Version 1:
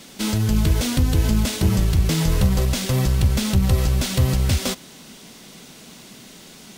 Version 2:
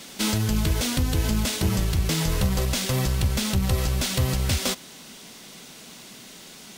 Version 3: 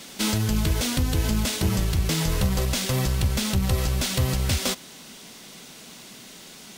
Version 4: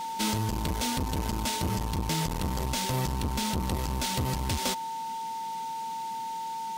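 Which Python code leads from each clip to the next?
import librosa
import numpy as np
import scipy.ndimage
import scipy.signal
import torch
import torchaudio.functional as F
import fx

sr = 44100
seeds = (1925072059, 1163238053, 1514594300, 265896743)

y1 = fx.low_shelf(x, sr, hz=430.0, db=-5.5)
y1 = fx.rider(y1, sr, range_db=10, speed_s=0.5)
y2 = y1
y3 = y2 + 10.0 ** (-28.0 / 20.0) * np.sin(2.0 * np.pi * 900.0 * np.arange(len(y2)) / sr)
y3 = fx.transformer_sat(y3, sr, knee_hz=290.0)
y3 = F.gain(torch.from_numpy(y3), -4.0).numpy()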